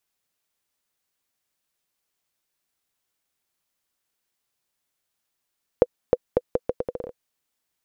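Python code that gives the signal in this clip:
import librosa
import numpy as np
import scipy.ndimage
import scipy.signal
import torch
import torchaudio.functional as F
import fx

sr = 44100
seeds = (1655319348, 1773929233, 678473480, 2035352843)

y = fx.bouncing_ball(sr, first_gap_s=0.31, ratio=0.77, hz=497.0, decay_ms=41.0, level_db=-2.5)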